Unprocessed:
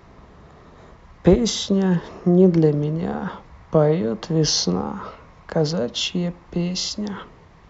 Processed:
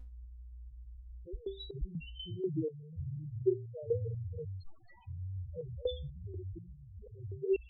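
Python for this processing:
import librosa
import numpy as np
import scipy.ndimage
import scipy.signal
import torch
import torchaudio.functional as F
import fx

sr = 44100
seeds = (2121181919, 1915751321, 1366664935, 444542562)

y = fx.echo_pitch(x, sr, ms=145, semitones=-4, count=3, db_per_echo=-3.0)
y = fx.low_shelf(y, sr, hz=120.0, db=4.0)
y = fx.add_hum(y, sr, base_hz=60, snr_db=17)
y = fx.fixed_phaser(y, sr, hz=1200.0, stages=8)
y = fx.overflow_wrap(y, sr, gain_db=26.5, at=(4.62, 5.07), fade=0.02)
y = fx.spec_topn(y, sr, count=2)
y = fx.resonator_held(y, sr, hz=4.1, low_hz=250.0, high_hz=1200.0)
y = y * librosa.db_to_amplitude(12.0)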